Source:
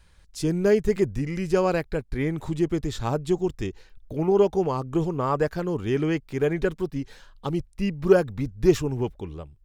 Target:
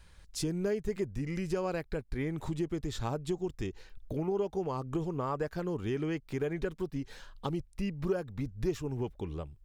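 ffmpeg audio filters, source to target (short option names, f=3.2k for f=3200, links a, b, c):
-af "acompressor=threshold=-33dB:ratio=3"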